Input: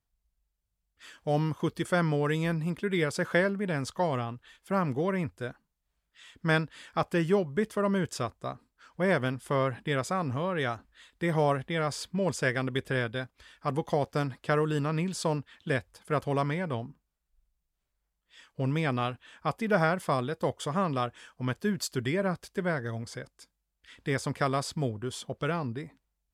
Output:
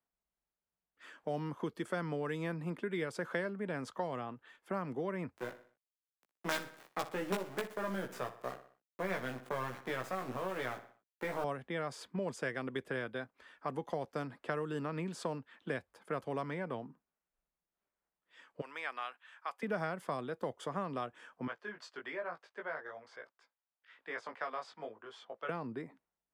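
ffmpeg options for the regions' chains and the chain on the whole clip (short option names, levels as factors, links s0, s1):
-filter_complex "[0:a]asettb=1/sr,asplit=3[s0][s1][s2];[s0]atrim=end=5.374[s3];[s1]atrim=start=5.37:end=11.44,asetpts=PTS-STARTPTS,afade=t=in:d=0.004:c=qsin,afade=t=out:st=6.066:d=0.004:c=qsin,acrusher=bits=4:dc=4:mix=0:aa=0.000001,asplit=2[s4][s5];[s5]adelay=16,volume=0.708[s6];[s4][s6]amix=inputs=2:normalize=0,atrim=end_sample=267687,aecho=1:1:61|122|183|244:0.188|0.0791|0.0332|0.014,atrim=end_sample=267687[s7];[s2]atrim=start=11.436[s8];[s3][s7]acrossfade=d=0.004:c1=hsin:c2=qsin[s9];[s9][s8]acrossfade=d=0.004:c1=qsin:c2=hsin,asettb=1/sr,asplit=3[s10][s11][s12];[s10]atrim=end=18.614[s13];[s11]atrim=start=18.61:end=19.63,asetpts=PTS-STARTPTS,afade=t=in:d=0.004:c=qsin,afade=t=out:st=1.016:d=0.004:c=qsin,highpass=1200,acompressor=mode=upward:threshold=0.00141:ratio=2.5:attack=3.2:release=140:knee=2.83:detection=peak[s14];[s12]atrim=start=19.626[s15];[s13][s14]acrossfade=d=0.004:c1=hsin:c2=qsin[s16];[s16][s15]acrossfade=d=0.004:c1=qsin:c2=hsin,asettb=1/sr,asplit=3[s17][s18][s19];[s17]atrim=end=21.474[s20];[s18]atrim=start=21.47:end=25.49,asetpts=PTS-STARTPTS,afade=t=in:d=0.004:c=qsin,afade=t=out:st=4.016:d=0.004:c=qsin,acrossover=split=540 6000:gain=0.1 1 0.0708[s21][s22][s23];[s21][s22][s23]amix=inputs=3:normalize=0,flanger=delay=17.5:depth=2:speed=1.1[s24];[s19]atrim=start=25.486[s25];[s20][s24]acrossfade=d=0.004:c1=hsin:c2=qsin[s26];[s26][s25]acrossfade=d=0.004:c1=qsin:c2=hsin,acrossover=split=190 2200:gain=0.0631 1 0.224[s27][s28][s29];[s27][s28][s29]amix=inputs=3:normalize=0,acrossover=split=140|3000[s30][s31][s32];[s31]acompressor=threshold=0.0141:ratio=3[s33];[s30][s33][s32]amix=inputs=3:normalize=0"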